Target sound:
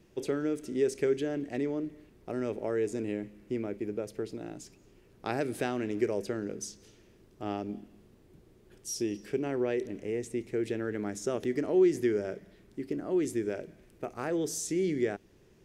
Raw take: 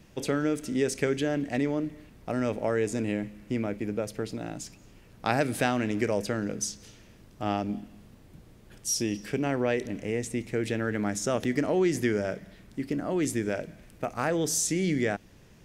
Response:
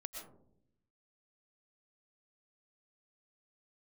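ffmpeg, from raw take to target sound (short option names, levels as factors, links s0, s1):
-af "equalizer=f=380:w=2.7:g=11.5,volume=0.376"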